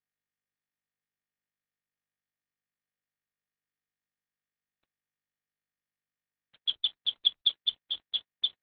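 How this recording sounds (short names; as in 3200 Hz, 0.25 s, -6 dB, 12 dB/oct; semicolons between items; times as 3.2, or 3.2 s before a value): a quantiser's noise floor 8-bit, dither none; Opus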